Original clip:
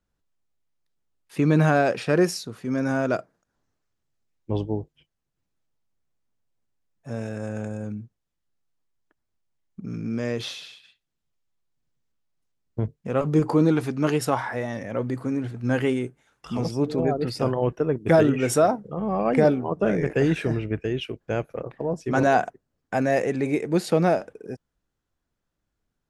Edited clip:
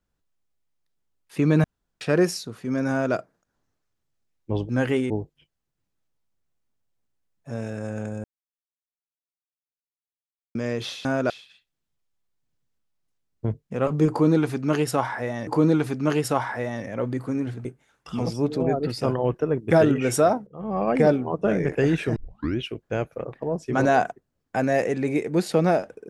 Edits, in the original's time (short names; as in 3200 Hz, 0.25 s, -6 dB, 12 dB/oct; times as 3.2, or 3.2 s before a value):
1.64–2.01 room tone
2.9–3.15 copy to 10.64
7.83–10.14 mute
13.44–14.81 loop, 2 plays
15.62–16.03 move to 4.69
18.85–19.17 fade in, from -18.5 dB
20.54 tape start 0.44 s